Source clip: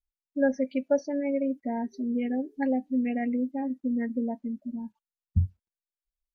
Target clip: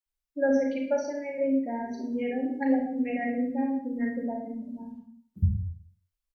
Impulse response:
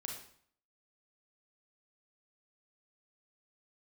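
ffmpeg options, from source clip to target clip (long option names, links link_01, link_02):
-filter_complex "[0:a]asettb=1/sr,asplit=3[link_01][link_02][link_03];[link_01]atrim=end=0.744[link_04];[link_02]atrim=start=0.74:end=1.4,asetpts=PTS-STARTPTS,afade=type=in:duration=0.004:curve=qsin,afade=type=out:start_time=0.656:duration=0.004:curve=qsin,lowshelf=frequency=380:gain=-7[link_05];[link_03]atrim=start=1.396[link_06];[link_04][link_05]acrossfade=duration=0.004:curve1=hsin:curve2=qsin[link_07];[link_07][link_06]acrossfade=duration=0.004:curve1=qsin:curve2=hsin,acrossover=split=260[link_08][link_09];[link_08]adelay=60[link_10];[link_10][link_09]amix=inputs=2:normalize=0[link_11];[1:a]atrim=start_sample=2205[link_12];[link_11][link_12]afir=irnorm=-1:irlink=0,volume=4.5dB"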